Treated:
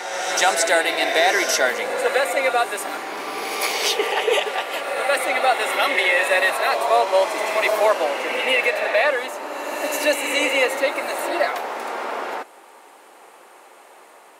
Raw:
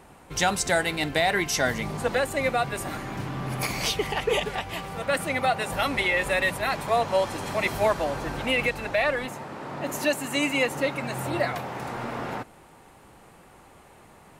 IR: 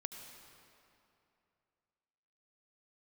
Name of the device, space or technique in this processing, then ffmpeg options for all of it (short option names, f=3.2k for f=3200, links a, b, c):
ghost voice: -filter_complex "[0:a]areverse[a];[1:a]atrim=start_sample=2205[b];[a][b]afir=irnorm=-1:irlink=0,areverse,highpass=f=370:w=0.5412,highpass=f=370:w=1.3066,volume=9dB"